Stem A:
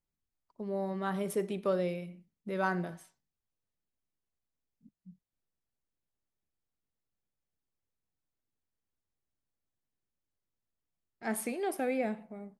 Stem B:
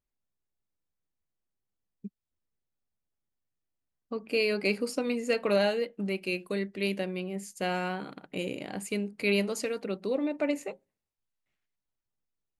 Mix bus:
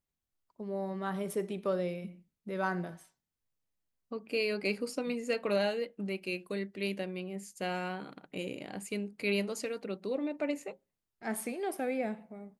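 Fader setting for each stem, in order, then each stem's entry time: −1.5, −4.5 decibels; 0.00, 0.00 seconds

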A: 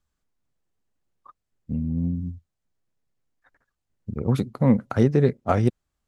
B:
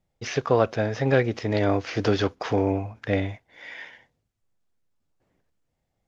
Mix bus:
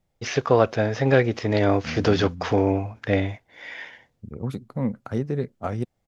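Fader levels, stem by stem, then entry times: −7.5, +2.5 decibels; 0.15, 0.00 seconds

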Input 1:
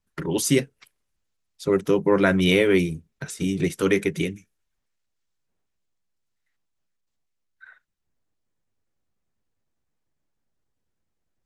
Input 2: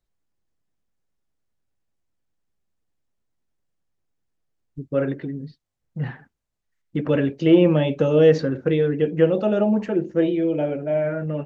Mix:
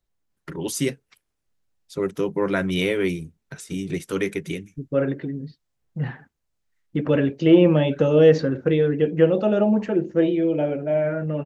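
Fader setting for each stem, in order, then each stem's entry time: −4.0, +0.5 decibels; 0.30, 0.00 seconds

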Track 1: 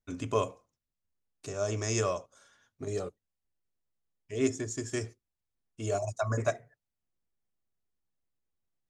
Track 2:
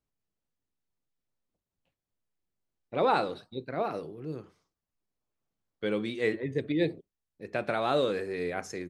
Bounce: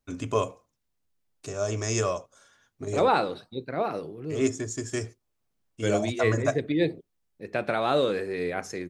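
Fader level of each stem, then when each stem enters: +3.0, +3.0 decibels; 0.00, 0.00 seconds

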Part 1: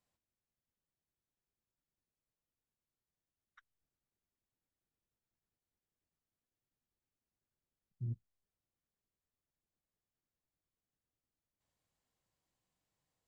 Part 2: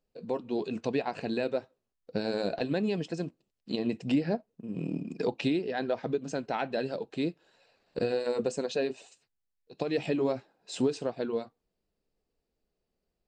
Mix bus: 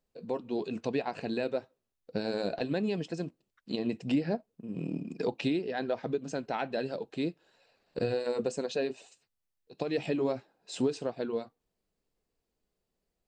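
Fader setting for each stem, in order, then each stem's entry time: −4.5, −1.5 decibels; 0.00, 0.00 seconds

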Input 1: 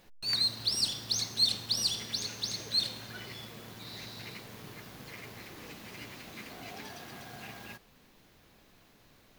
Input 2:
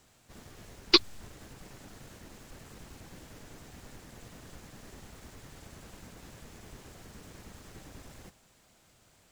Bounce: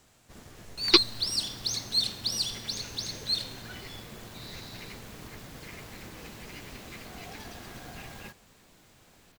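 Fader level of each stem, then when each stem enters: 0.0, +1.5 decibels; 0.55, 0.00 seconds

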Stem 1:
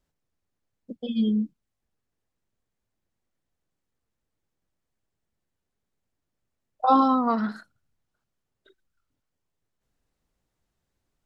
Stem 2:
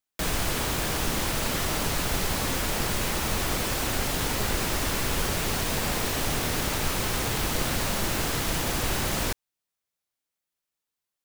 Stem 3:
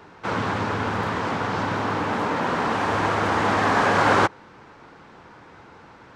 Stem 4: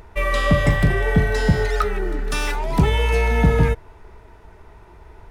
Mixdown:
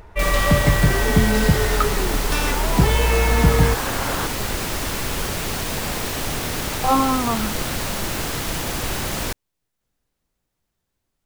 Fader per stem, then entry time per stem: +0.5, +2.0, −9.5, 0.0 decibels; 0.00, 0.00, 0.00, 0.00 seconds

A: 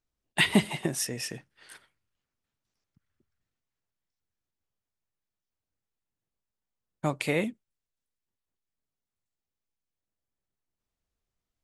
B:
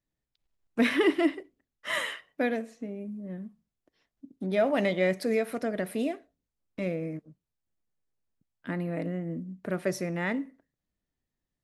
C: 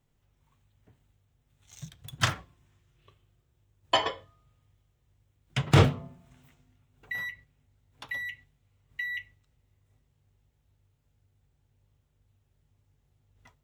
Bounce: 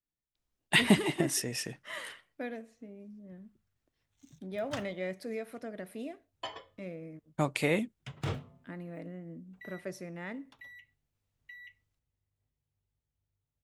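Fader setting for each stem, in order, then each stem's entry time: −1.0, −11.0, −16.0 decibels; 0.35, 0.00, 2.50 seconds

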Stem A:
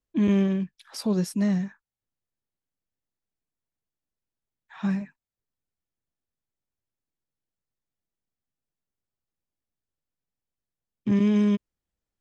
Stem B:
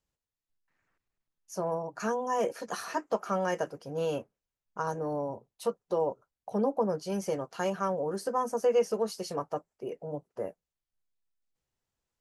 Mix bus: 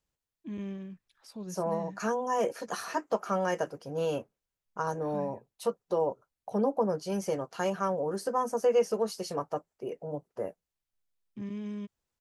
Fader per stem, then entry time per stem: −16.5, +0.5 decibels; 0.30, 0.00 seconds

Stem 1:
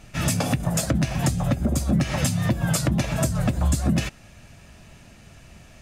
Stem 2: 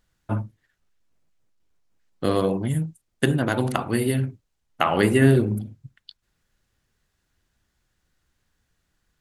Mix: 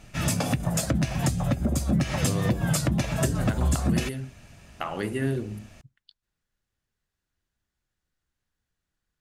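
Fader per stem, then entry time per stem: −2.5, −11.0 decibels; 0.00, 0.00 seconds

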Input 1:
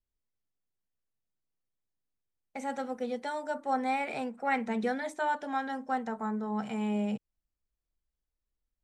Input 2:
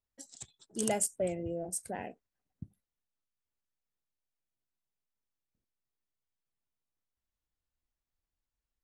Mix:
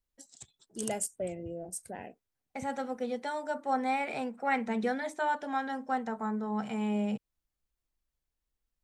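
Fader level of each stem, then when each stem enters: 0.0, −3.0 decibels; 0.00, 0.00 seconds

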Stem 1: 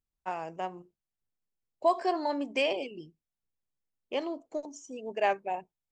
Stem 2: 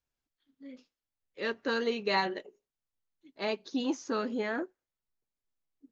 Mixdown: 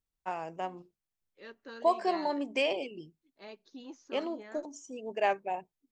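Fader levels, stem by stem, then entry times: −1.0, −15.5 decibels; 0.00, 0.00 seconds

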